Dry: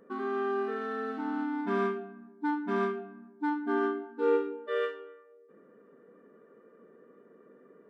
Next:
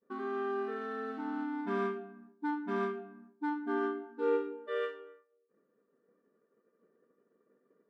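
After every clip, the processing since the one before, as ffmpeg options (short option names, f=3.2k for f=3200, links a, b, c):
-af "agate=range=-33dB:threshold=-48dB:ratio=3:detection=peak,volume=-4dB"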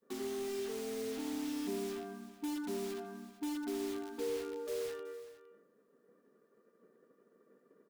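-filter_complex "[0:a]acrossover=split=360|870[a][b][c];[a]acompressor=threshold=-51dB:ratio=4[d];[b]acompressor=threshold=-42dB:ratio=4[e];[c]acompressor=threshold=-49dB:ratio=4[f];[d][e][f]amix=inputs=3:normalize=0,acrossover=split=640[g][h];[h]aeval=exprs='(mod(316*val(0)+1,2)-1)/316':c=same[i];[g][i]amix=inputs=2:normalize=0,aecho=1:1:77|375|460:0.188|0.15|0.119,volume=4.5dB"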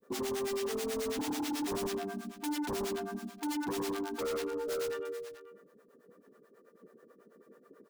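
-filter_complex "[0:a]acrossover=split=470[a][b];[a]aeval=exprs='val(0)*(1-1/2+1/2*cos(2*PI*9.2*n/s))':c=same[c];[b]aeval=exprs='val(0)*(1-1/2-1/2*cos(2*PI*9.2*n/s))':c=same[d];[c][d]amix=inputs=2:normalize=0,aeval=exprs='0.0282*sin(PI/2*2.82*val(0)/0.0282)':c=same"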